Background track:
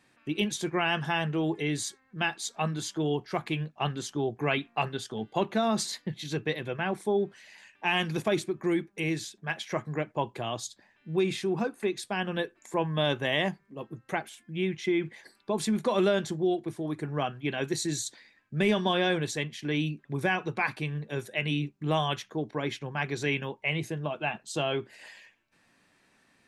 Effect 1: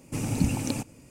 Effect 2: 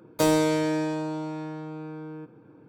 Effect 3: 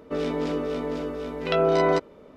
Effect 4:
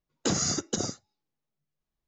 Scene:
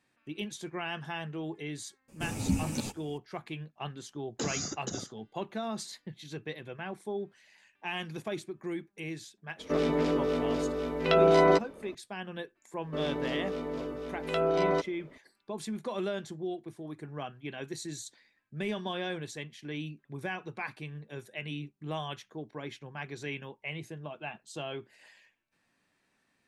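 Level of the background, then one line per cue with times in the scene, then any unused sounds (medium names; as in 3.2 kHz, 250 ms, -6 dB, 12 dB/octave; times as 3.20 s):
background track -9 dB
2.08 s: add 1 -2 dB + three-phase chorus
4.14 s: add 4 -8 dB
9.59 s: add 3 -0.5 dB
12.82 s: add 3 -6.5 dB
not used: 2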